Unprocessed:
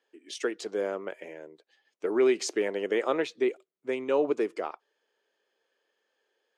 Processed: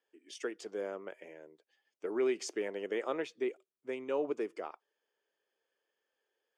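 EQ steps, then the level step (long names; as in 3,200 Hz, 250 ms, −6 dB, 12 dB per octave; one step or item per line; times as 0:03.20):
notch filter 4,000 Hz, Q 7.8
−8.0 dB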